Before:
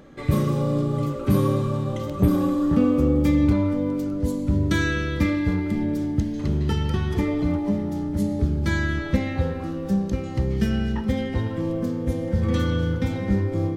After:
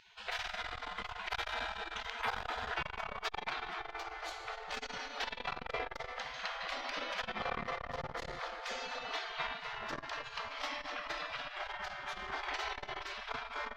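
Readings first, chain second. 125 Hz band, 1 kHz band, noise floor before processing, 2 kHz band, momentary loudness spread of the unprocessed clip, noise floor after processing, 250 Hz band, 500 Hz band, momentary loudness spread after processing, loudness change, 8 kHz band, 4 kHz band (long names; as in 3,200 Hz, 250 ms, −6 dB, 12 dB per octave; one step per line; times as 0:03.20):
−34.0 dB, −3.5 dB, −31 dBFS, −5.5 dB, 6 LU, −51 dBFS, −34.0 dB, −17.0 dB, 4 LU, −16.0 dB, −9.5 dB, −2.0 dB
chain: bass and treble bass −10 dB, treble 0 dB
on a send: feedback echo with a low-pass in the loop 260 ms, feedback 57%, low-pass 1,700 Hz, level −6 dB
on the sum: gate on every frequency bin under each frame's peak −25 dB weak
high-frequency loss of the air 230 metres
saturating transformer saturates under 610 Hz
level +11.5 dB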